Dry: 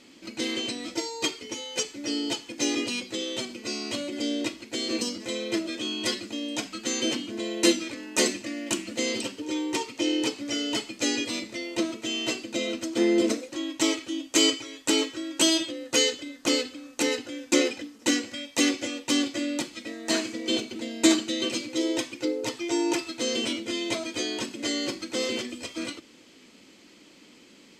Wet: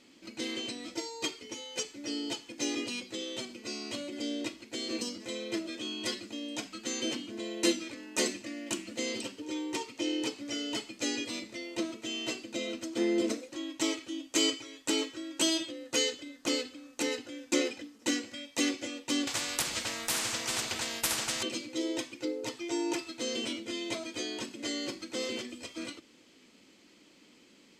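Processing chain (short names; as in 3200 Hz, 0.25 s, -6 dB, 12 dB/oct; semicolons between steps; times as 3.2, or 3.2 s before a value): 19.27–21.43 spectral compressor 10:1; gain -6.5 dB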